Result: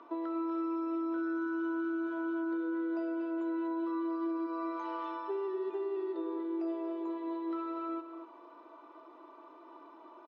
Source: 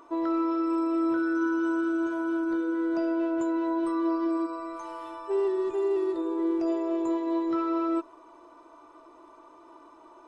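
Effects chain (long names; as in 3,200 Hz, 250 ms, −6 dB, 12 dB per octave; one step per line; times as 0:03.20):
in parallel at +2.5 dB: speech leveller within 4 dB 0.5 s
on the sum: low-pass filter 4,100 Hz 24 dB per octave
downward compressor, threshold −25 dBFS, peak gain reduction 9.5 dB
Butterworth high-pass 190 Hz 96 dB per octave
single-tap delay 242 ms −10 dB
level −9 dB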